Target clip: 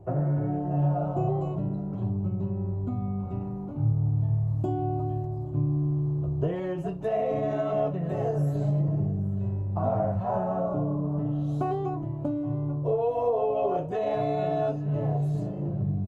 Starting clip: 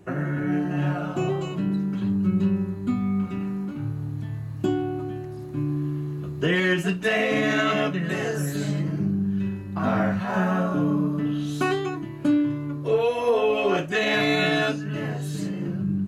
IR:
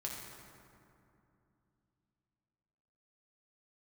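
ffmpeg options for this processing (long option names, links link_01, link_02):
-filter_complex "[0:a]asettb=1/sr,asplit=3[link_01][link_02][link_03];[link_01]atrim=end=4.474[link_04];[link_02]atrim=start=4.47:end=5.27,asetpts=PTS-STARTPTS,afade=type=in:duration=0.004:curve=qsin,afade=type=out:start_time=0.796:duration=0.004:curve=qsin,highshelf=frequency=2800:gain=8[link_05];[link_03]atrim=start=5.266[link_06];[link_04][link_05]acrossfade=duration=0.004:curve1=hsin:curve2=qsin[link_07];[link_07][link_06]acrossfade=duration=0.004:curve1=qsin:curve2=hsin,acompressor=threshold=-23dB:ratio=6,firequalizer=gain_entry='entry(130,0);entry(190,-15);entry(670,-1);entry(1600,-27)':delay=0.05:min_phase=1,aecho=1:1:821|1642:0.0891|0.0294,volume=7.5dB"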